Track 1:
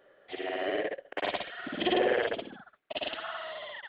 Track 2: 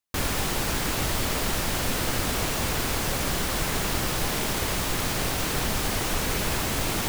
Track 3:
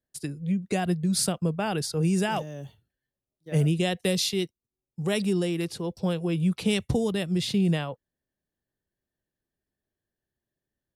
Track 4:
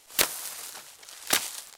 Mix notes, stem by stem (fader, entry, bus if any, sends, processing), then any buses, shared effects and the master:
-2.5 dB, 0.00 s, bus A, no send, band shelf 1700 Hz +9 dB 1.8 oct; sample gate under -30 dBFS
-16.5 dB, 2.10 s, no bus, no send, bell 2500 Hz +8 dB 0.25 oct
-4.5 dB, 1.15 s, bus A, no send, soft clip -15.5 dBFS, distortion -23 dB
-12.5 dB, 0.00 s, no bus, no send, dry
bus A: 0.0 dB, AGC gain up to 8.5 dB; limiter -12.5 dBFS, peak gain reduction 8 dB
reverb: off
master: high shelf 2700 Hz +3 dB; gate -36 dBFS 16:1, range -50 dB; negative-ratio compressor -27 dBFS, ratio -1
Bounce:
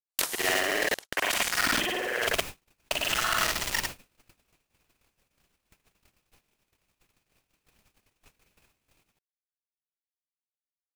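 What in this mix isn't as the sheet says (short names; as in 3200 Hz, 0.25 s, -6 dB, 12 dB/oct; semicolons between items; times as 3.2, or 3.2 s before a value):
stem 3: muted; stem 4 -12.5 dB -> -6.5 dB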